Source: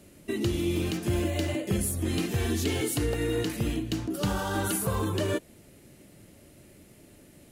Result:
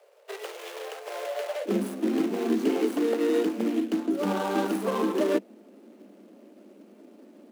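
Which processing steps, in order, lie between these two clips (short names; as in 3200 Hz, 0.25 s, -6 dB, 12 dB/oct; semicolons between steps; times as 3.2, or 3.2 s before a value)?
median filter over 25 samples; steep high-pass 430 Hz 96 dB/oct, from 1.65 s 200 Hz; gain +6 dB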